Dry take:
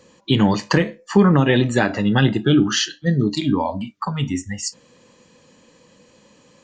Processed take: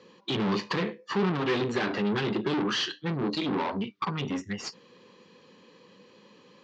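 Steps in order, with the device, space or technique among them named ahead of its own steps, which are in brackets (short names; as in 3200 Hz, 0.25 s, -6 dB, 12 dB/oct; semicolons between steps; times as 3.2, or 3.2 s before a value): guitar amplifier (tube stage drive 26 dB, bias 0.65; tone controls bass -6 dB, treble +9 dB; speaker cabinet 110–4000 Hz, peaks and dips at 110 Hz +4 dB, 190 Hz +7 dB, 400 Hz +9 dB, 630 Hz -6 dB, 1100 Hz +4 dB)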